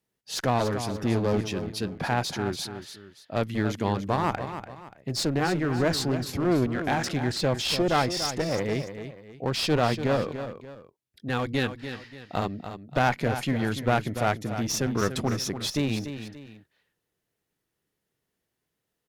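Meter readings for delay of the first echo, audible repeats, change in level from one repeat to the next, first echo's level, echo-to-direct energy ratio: 290 ms, 2, -9.0 dB, -10.0 dB, -9.5 dB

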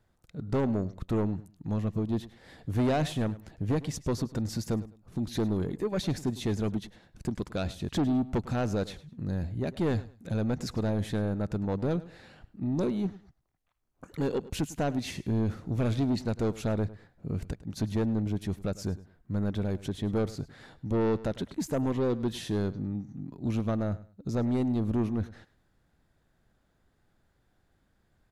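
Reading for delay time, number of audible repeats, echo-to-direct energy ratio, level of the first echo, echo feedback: 103 ms, 2, -17.5 dB, -18.0 dB, 24%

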